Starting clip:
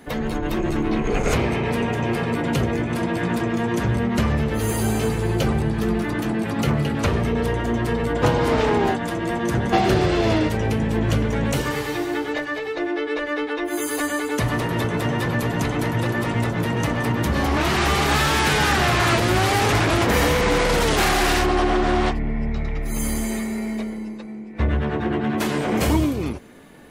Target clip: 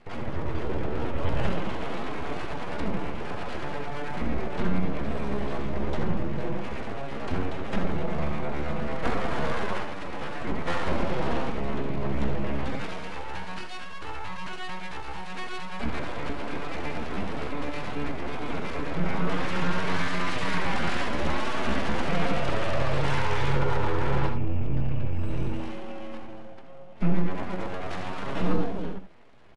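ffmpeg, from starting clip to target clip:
-filter_complex "[0:a]lowpass=1.9k,lowshelf=f=110:t=q:w=1.5:g=8,asetrate=40131,aresample=44100,aresample=16000,aeval=exprs='abs(val(0))':c=same,aresample=44100,asetrate=60591,aresample=44100,atempo=0.727827,asplit=2[a][b];[b]aecho=0:1:65|80:0.266|0.299[c];[a][c]amix=inputs=2:normalize=0,volume=-7.5dB"

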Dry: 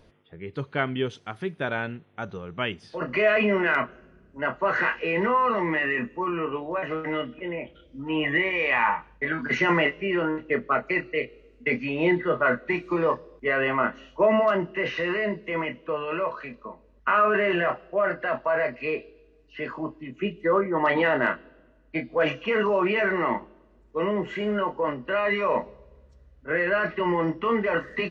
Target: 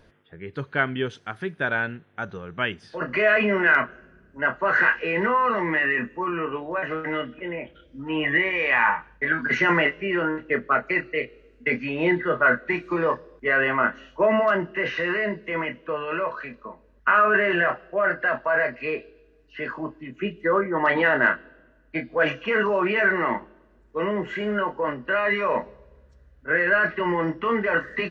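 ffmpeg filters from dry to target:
-af "equalizer=f=1.6k:t=o:w=0.4:g=8.5"

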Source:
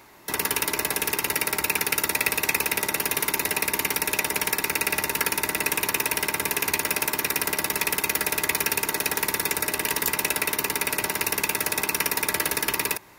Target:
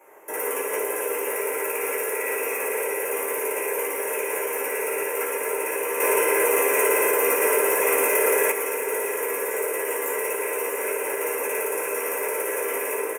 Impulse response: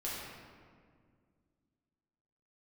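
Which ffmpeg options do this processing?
-filter_complex "[0:a]highpass=f=470:t=q:w=4.9,highshelf=f=9.7k:g=6[a];[1:a]atrim=start_sample=2205,asetrate=79380,aresample=44100[b];[a][b]afir=irnorm=-1:irlink=0,aresample=32000,aresample=44100,aecho=1:1:46|418|442|636:0.126|0.126|0.141|0.376,alimiter=limit=-17dB:level=0:latency=1:release=66,asettb=1/sr,asplit=3[c][d][e];[c]atrim=end=6.004[f];[d]atrim=start=6:end=8.52,asetpts=PTS-STARTPTS,afade=t=in:d=0.004:c=qsin,afade=t=out:st=2.516:d=0.004:c=qsin,acontrast=62[g];[e]atrim=start=8.516[h];[f][g]acrossfade=d=0.004:c1=hsin:c2=qsin[i];[i][h]acrossfade=d=0.004:c1=qsin:c2=hsin,asuperstop=centerf=4300:order=4:qfactor=0.89,volume=1.5dB" -ar 44100 -c:a libmp3lame -b:a 128k

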